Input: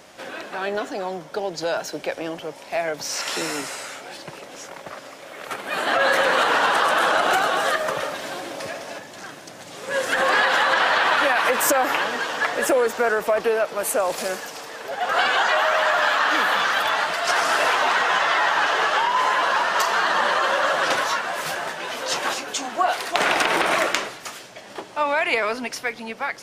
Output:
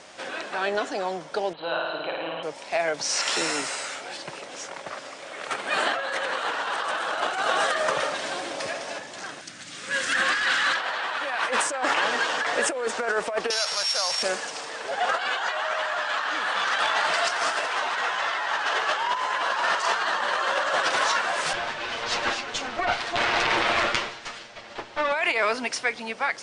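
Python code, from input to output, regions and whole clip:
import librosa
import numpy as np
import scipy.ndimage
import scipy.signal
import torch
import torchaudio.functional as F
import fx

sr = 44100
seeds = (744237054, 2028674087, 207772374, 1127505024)

y = fx.chain(x, sr, fx.cheby_ripple(hz=4100.0, ripple_db=9),
    fx.room_flutter(wall_m=9.3, rt60_s=1.5), at=(1.53, 2.43))
y = fx.chain(y, sr, fx.band_shelf(hz=630.0, db=-11.0, octaves=1.7),
    fx.clip_hard(threshold_db=-18.0), at=(9.41, 10.77))
y = fx.chain(y, sr, fx.sample_sort(block=8),
    fx.tone_stack(knobs='10-0-10'),
    fx.env_flatten(amount_pct=70), at=(13.5, 14.23))
y = fx.chain(y, sr, fx.lower_of_two(delay_ms=8.6),
    fx.lowpass(hz=4700.0, slope=12), at=(21.53, 25.12))
y = scipy.signal.sosfilt(scipy.signal.ellip(4, 1.0, 40, 9200.0, 'lowpass', fs=sr, output='sos'), y)
y = fx.low_shelf(y, sr, hz=350.0, db=-6.5)
y = fx.over_compress(y, sr, threshold_db=-24.0, ratio=-0.5)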